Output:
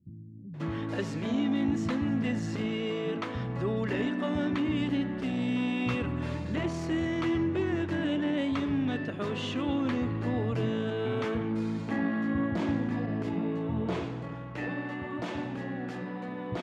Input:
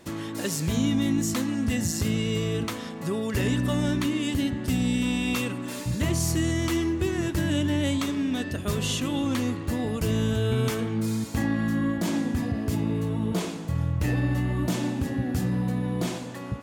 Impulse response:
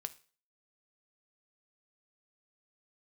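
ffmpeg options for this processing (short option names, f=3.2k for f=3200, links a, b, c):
-filter_complex "[0:a]asettb=1/sr,asplit=3[a][b][c];[a]atrim=end=13.804[d];[b]atrim=start=13.8:end=16.28,asetpts=PTS-STARTPTS,afade=t=in:d=0.004:c=qsin,afade=t=out:st=2.476:d=0.004:c=qsin,lowshelf=f=330:g=-9.5[e];[c]atrim=start=16.276[f];[d][e]acrossfade=d=0.004:c1=hsin:c2=qsin[g];[g][f]acrossfade=d=0.004:c1=qsin:c2=hsin,asoftclip=type=tanh:threshold=-19dB,highpass=120,lowpass=2.5k,acrossover=split=170[h][i];[i]adelay=540[j];[h][j]amix=inputs=2:normalize=0"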